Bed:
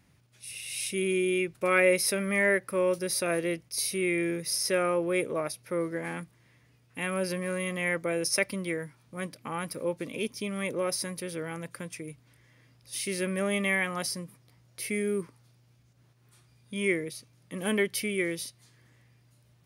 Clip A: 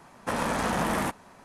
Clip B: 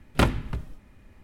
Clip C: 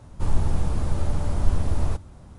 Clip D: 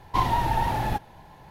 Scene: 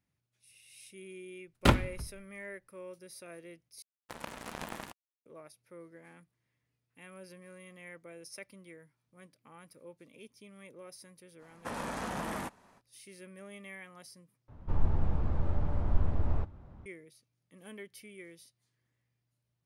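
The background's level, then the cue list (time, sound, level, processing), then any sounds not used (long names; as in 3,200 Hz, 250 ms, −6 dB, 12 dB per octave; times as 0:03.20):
bed −20 dB
0:01.46: mix in B −9 dB + multiband upward and downward expander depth 100%
0:03.82: overwrite with A −3 dB + power curve on the samples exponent 3
0:11.38: mix in A −10 dB, fades 0.05 s
0:14.48: overwrite with C −6.5 dB + low-pass filter 2,100 Hz
not used: D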